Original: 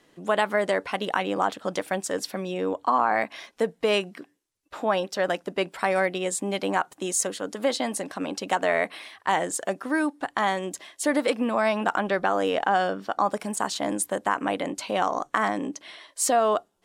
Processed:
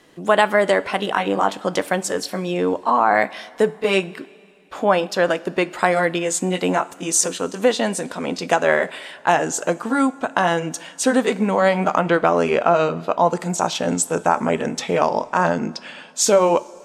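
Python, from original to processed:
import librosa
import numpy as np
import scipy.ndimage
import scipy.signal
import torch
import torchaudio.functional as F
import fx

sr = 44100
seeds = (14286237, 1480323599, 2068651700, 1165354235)

y = fx.pitch_glide(x, sr, semitones=-3.5, runs='starting unshifted')
y = fx.rev_double_slope(y, sr, seeds[0], early_s=0.35, late_s=2.7, knee_db=-15, drr_db=14.5)
y = F.gain(torch.from_numpy(y), 7.5).numpy()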